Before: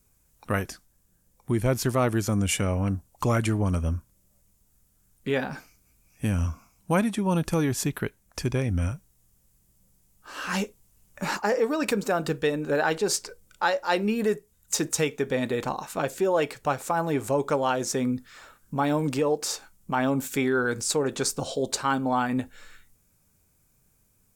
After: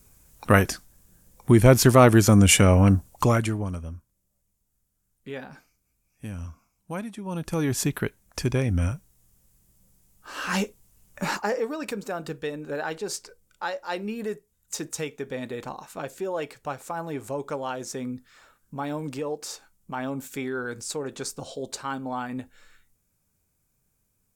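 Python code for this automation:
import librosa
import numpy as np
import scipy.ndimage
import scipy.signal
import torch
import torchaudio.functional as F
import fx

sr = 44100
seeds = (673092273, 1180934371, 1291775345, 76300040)

y = fx.gain(x, sr, db=fx.line((3.08, 9.0), (3.47, -1.0), (3.9, -10.0), (7.22, -10.0), (7.75, 2.0), (11.23, 2.0), (11.81, -6.5)))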